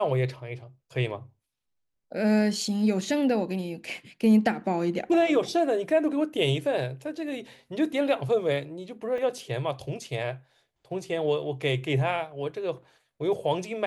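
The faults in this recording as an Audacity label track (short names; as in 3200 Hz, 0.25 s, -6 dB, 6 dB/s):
9.180000	9.180000	gap 2.3 ms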